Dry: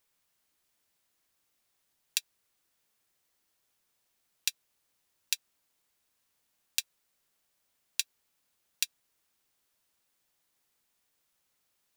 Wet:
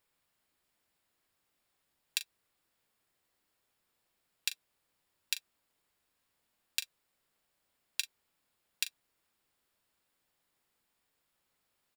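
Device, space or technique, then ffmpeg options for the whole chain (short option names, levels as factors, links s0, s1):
behind a face mask: -filter_complex "[0:a]highshelf=f=3300:g=-6.5,bandreject=f=6100:w=8,asplit=2[s0][s1];[s1]adelay=40,volume=0.224[s2];[s0][s2]amix=inputs=2:normalize=0,volume=1.19"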